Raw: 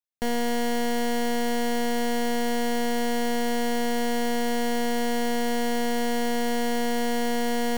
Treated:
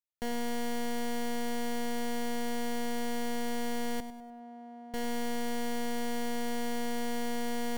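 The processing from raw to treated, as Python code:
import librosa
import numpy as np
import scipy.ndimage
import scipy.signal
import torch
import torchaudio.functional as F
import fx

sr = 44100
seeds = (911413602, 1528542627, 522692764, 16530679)

p1 = fx.double_bandpass(x, sr, hz=440.0, octaves=0.97, at=(4.0, 4.94))
p2 = p1 + fx.echo_feedback(p1, sr, ms=100, feedback_pct=39, wet_db=-12.5, dry=0)
y = p2 * librosa.db_to_amplitude(-8.0)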